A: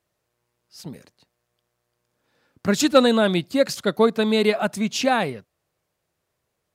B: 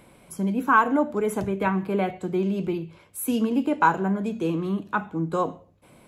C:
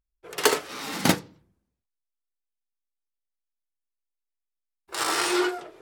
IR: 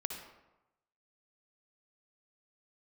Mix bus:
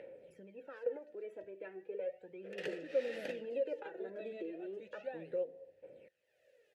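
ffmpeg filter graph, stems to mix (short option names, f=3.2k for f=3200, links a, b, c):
-filter_complex "[0:a]deesser=1,highshelf=f=7.6k:g=10.5,volume=-14.5dB,asplit=3[a][b][c];[b]volume=-14dB[d];[1:a]highshelf=f=2.9k:g=-9,aecho=1:1:2.2:0.33,asoftclip=type=tanh:threshold=-8dB,volume=0.5dB[e];[2:a]acompressor=threshold=-30dB:ratio=4,adelay=2200,volume=-2dB,asplit=2[f][g];[g]volume=-9dB[h];[c]apad=whole_len=268207[i];[e][i]sidechaingate=range=-10dB:threshold=-53dB:ratio=16:detection=peak[j];[a][j]amix=inputs=2:normalize=0,aphaser=in_gain=1:out_gain=1:delay=3.1:decay=0.67:speed=0.35:type=sinusoidal,acompressor=threshold=-26dB:ratio=12,volume=0dB[k];[3:a]atrim=start_sample=2205[l];[d][h]amix=inputs=2:normalize=0[m];[m][l]afir=irnorm=-1:irlink=0[n];[f][k][n]amix=inputs=3:normalize=0,acompressor=mode=upward:threshold=-32dB:ratio=2.5,acrusher=bits=10:mix=0:aa=0.000001,asplit=3[o][p][q];[o]bandpass=f=530:t=q:w=8,volume=0dB[r];[p]bandpass=f=1.84k:t=q:w=8,volume=-6dB[s];[q]bandpass=f=2.48k:t=q:w=8,volume=-9dB[t];[r][s][t]amix=inputs=3:normalize=0"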